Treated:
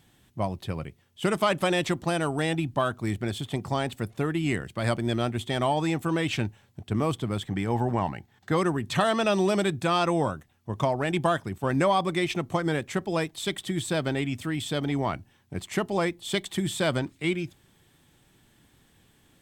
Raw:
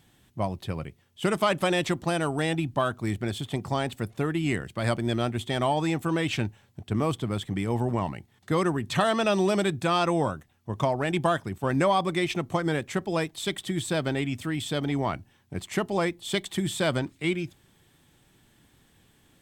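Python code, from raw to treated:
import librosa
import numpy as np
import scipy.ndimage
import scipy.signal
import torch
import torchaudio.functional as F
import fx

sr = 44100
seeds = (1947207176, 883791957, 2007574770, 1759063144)

y = fx.graphic_eq_31(x, sr, hz=(800, 1600, 10000), db=(6, 6, -10), at=(7.45, 8.56))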